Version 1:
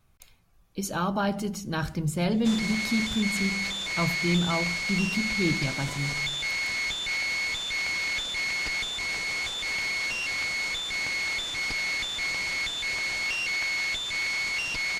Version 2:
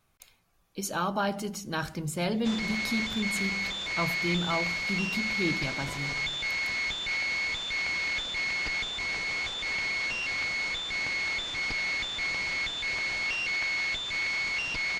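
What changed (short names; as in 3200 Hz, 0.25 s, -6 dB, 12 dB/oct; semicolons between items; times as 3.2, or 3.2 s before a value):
speech: add low shelf 190 Hz -10.5 dB; background: add air absorption 88 m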